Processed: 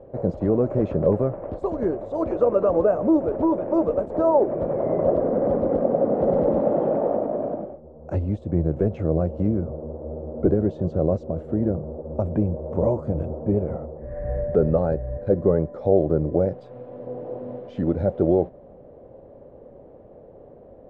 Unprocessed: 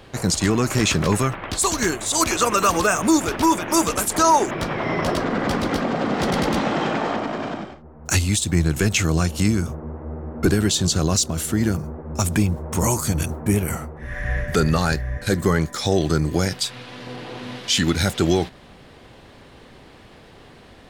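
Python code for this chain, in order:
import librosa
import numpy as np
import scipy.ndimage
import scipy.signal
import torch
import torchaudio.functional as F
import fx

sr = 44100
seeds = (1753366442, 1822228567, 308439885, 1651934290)

y = fx.lowpass_res(x, sr, hz=560.0, q=4.9)
y = y * librosa.db_to_amplitude(-4.5)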